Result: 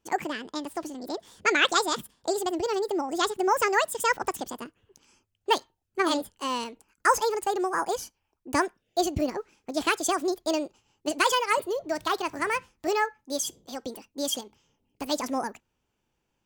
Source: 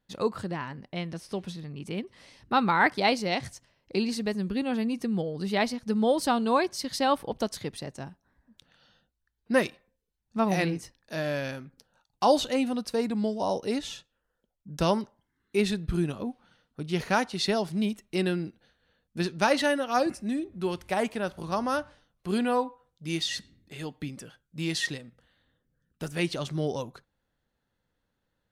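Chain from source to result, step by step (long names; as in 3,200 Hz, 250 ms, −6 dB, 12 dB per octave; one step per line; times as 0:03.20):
wrong playback speed 45 rpm record played at 78 rpm
level +1 dB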